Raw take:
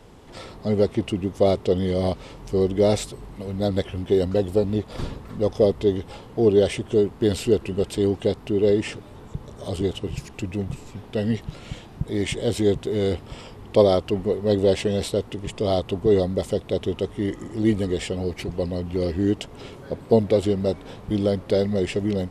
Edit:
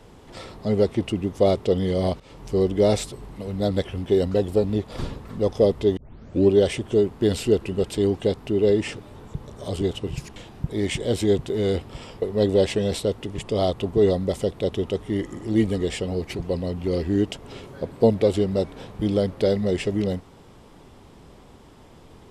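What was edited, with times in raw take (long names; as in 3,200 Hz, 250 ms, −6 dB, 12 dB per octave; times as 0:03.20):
0:02.20–0:02.50: fade in equal-power, from −18 dB
0:05.97: tape start 0.54 s
0:10.36–0:11.73: remove
0:13.59–0:14.31: remove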